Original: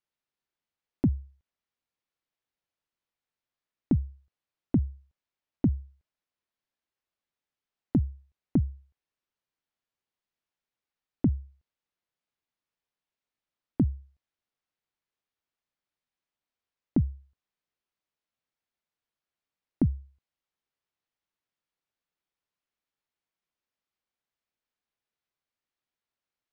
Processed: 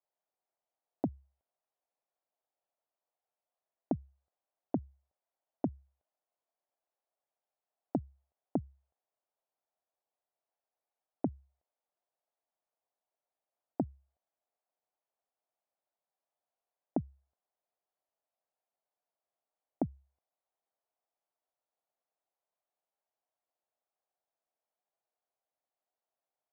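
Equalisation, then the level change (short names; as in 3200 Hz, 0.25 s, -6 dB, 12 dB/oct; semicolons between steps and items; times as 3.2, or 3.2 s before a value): band-pass 680 Hz, Q 3.2; +9.0 dB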